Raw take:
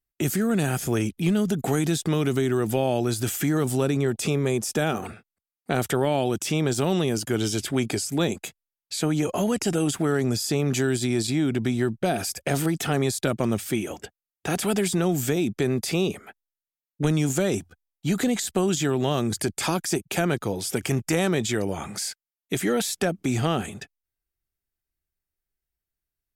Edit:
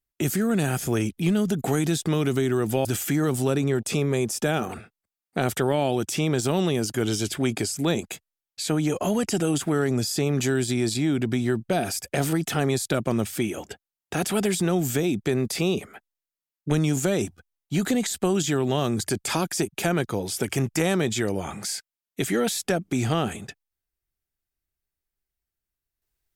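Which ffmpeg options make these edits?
-filter_complex "[0:a]asplit=2[a][b];[a]atrim=end=2.852[c];[b]atrim=start=3.178[d];[c][d]acrossfade=d=0.004:c1=hsin:c2=hsin"

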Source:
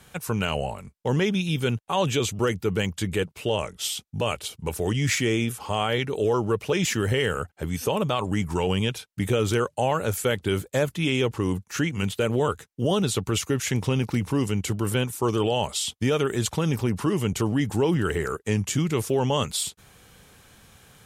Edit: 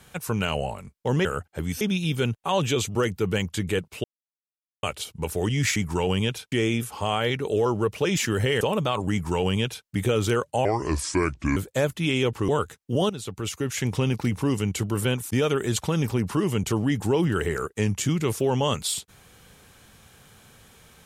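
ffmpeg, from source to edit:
-filter_complex "[0:a]asplit=13[a][b][c][d][e][f][g][h][i][j][k][l][m];[a]atrim=end=1.252[n];[b]atrim=start=7.288:end=7.852[o];[c]atrim=start=1.248:end=3.48,asetpts=PTS-STARTPTS,afade=t=out:st=2.228:d=0.004:c=hsin[p];[d]atrim=start=3.48:end=4.27,asetpts=PTS-STARTPTS,volume=0[q];[e]atrim=start=4.27:end=5.202,asetpts=PTS-STARTPTS,afade=t=in:d=0.004:c=hsin[r];[f]atrim=start=8.358:end=9.122[s];[g]atrim=start=5.198:end=7.292[t];[h]atrim=start=7.848:end=9.894[u];[i]atrim=start=9.89:end=10.55,asetpts=PTS-STARTPTS,asetrate=31752,aresample=44100[v];[j]atrim=start=10.546:end=11.472[w];[k]atrim=start=12.378:end=12.99,asetpts=PTS-STARTPTS,afade=t=out:st=0.608:d=0.004:c=hsin:silence=0.223872[x];[l]atrim=start=12.99:end=15.202,asetpts=PTS-STARTPTS,afade=t=in:d=0.88:silence=0.223872[y];[m]atrim=start=15.998[z];[n][o]acrossfade=d=0.004:c1=hsin:c2=hsin[aa];[p][q][r]concat=n=3:v=0:a=1[ab];[aa][ab]acrossfade=d=0.004:c1=hsin:c2=hsin[ac];[ac][s]acrossfade=d=0.004:c1=hsin:c2=hsin[ad];[ad][t]acrossfade=d=0.004:c1=hsin:c2=hsin[ae];[ae][u]acrossfade=d=0.004:c1=hsin:c2=hsin[af];[af][v]acrossfade=d=0.004:c1=hsin:c2=hsin[ag];[ag][w]acrossfade=d=0.004:c1=hsin:c2=hsin[ah];[x][y]concat=n=2:v=0:a=1[ai];[ah][ai]acrossfade=d=0.004:c1=hsin:c2=hsin[aj];[aj][z]acrossfade=d=0.004:c1=hsin:c2=hsin"

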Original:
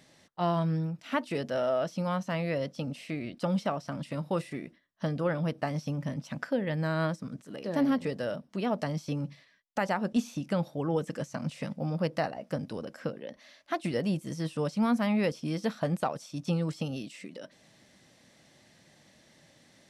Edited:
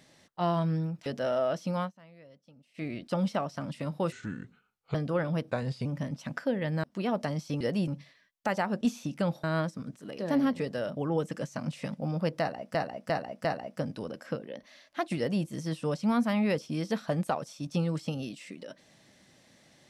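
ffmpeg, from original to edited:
-filter_complex "[0:a]asplit=16[a][b][c][d][e][f][g][h][i][j][k][l][m][n][o][p];[a]atrim=end=1.062[q];[b]atrim=start=1.368:end=2.22,asetpts=PTS-STARTPTS,afade=t=out:st=0.722:d=0.13:c=qsin:silence=0.0707946[r];[c]atrim=start=2.22:end=3.05,asetpts=PTS-STARTPTS,volume=-23dB[s];[d]atrim=start=3.05:end=4.434,asetpts=PTS-STARTPTS,afade=t=in:d=0.13:c=qsin:silence=0.0707946[t];[e]atrim=start=4.43:end=5.05,asetpts=PTS-STARTPTS,asetrate=33075,aresample=44100[u];[f]atrim=start=5.046:end=5.614[v];[g]atrim=start=5.61:end=5.91,asetpts=PTS-STARTPTS,asetrate=37926,aresample=44100[w];[h]atrim=start=5.906:end=6.892[x];[i]atrim=start=8.418:end=9.192[y];[j]atrim=start=13.908:end=14.182[z];[k]atrim=start=9.188:end=10.752[aa];[l]atrim=start=6.888:end=8.422[ab];[m]atrim=start=10.748:end=12.532[ac];[n]atrim=start=12.178:end=12.532[ad];[o]atrim=start=12.178:end=12.532[ae];[p]atrim=start=12.178[af];[r][s][t]concat=n=3:v=0:a=1[ag];[q][ag]acrossfade=d=0.004:c1=hsin:c2=hsin[ah];[ah][u]acrossfade=d=0.004:c1=hsin:c2=hsin[ai];[ai][v]acrossfade=d=0.004:c1=hsin:c2=hsin[aj];[aj][w]acrossfade=d=0.004:c1=hsin:c2=hsin[ak];[ak][x]acrossfade=d=0.004:c1=hsin:c2=hsin[al];[al][y]acrossfade=d=0.004:c1=hsin:c2=hsin[am];[am][z]acrossfade=d=0.004:c1=hsin:c2=hsin[an];[an][aa]acrossfade=d=0.004:c1=hsin:c2=hsin[ao];[ao][ab]acrossfade=d=0.004:c1=hsin:c2=hsin[ap];[ap][ac]acrossfade=d=0.004:c1=hsin:c2=hsin[aq];[aq][ad]acrossfade=d=0.004:c1=hsin:c2=hsin[ar];[ar][ae]acrossfade=d=0.004:c1=hsin:c2=hsin[as];[as][af]acrossfade=d=0.004:c1=hsin:c2=hsin"

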